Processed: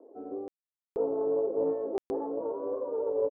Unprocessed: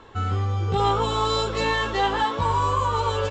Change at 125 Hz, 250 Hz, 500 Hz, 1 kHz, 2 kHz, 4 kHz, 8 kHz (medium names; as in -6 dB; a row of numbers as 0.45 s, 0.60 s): -32.5 dB, -4.0 dB, -1.5 dB, -21.5 dB, under -30 dB, under -35 dB, under -30 dB